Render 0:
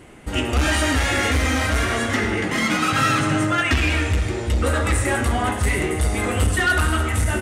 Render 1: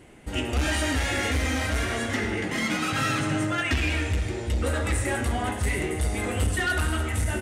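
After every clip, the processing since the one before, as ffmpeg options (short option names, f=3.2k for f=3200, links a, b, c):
-af "equalizer=f=1.2k:t=o:w=0.49:g=-4.5,volume=-5.5dB"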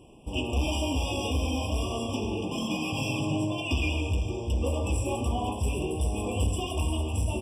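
-af "afftfilt=real='re*eq(mod(floor(b*sr/1024/1200),2),0)':imag='im*eq(mod(floor(b*sr/1024/1200),2),0)':win_size=1024:overlap=0.75,volume=-1.5dB"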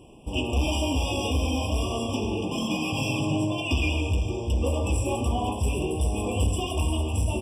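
-af "acontrast=74,volume=-4dB"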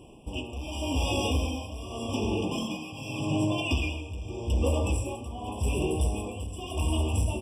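-af "tremolo=f=0.85:d=0.77"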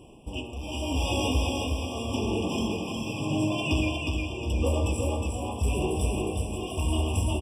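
-af "aecho=1:1:361|722|1083|1444|1805:0.668|0.267|0.107|0.0428|0.0171"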